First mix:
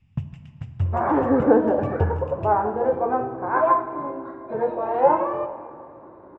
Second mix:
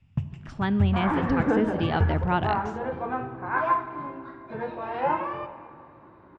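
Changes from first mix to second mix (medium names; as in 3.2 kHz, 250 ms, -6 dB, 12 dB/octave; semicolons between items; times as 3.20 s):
speech: unmuted; second sound: add FFT filter 170 Hz 0 dB, 550 Hz -12 dB, 2.8 kHz +8 dB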